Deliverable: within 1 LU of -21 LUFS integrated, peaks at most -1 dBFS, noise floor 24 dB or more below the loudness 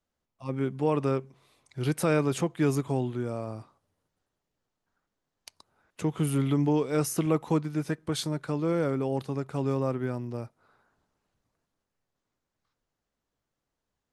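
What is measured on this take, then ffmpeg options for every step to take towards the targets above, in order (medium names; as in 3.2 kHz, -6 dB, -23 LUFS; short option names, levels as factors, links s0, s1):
loudness -29.0 LUFS; peak level -13.0 dBFS; loudness target -21.0 LUFS
-> -af "volume=2.51"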